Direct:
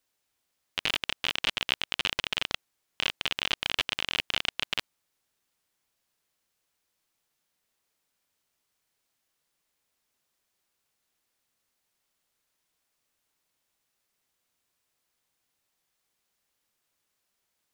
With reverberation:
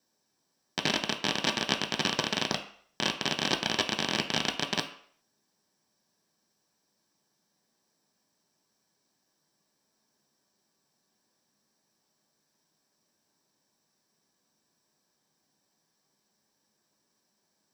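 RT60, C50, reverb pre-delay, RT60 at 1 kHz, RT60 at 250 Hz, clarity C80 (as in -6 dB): 0.55 s, 11.5 dB, 3 ms, 0.55 s, 0.45 s, 14.0 dB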